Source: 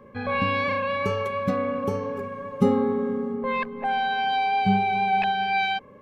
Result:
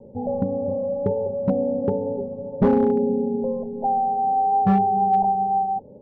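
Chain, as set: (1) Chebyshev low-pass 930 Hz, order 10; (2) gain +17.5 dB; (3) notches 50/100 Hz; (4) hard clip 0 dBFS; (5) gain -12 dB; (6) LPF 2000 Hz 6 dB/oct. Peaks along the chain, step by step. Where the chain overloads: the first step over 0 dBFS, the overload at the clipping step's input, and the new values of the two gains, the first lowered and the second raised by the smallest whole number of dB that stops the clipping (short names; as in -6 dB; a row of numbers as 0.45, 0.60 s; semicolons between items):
-8.0, +9.5, +9.5, 0.0, -12.0, -12.0 dBFS; step 2, 9.5 dB; step 2 +7.5 dB, step 5 -2 dB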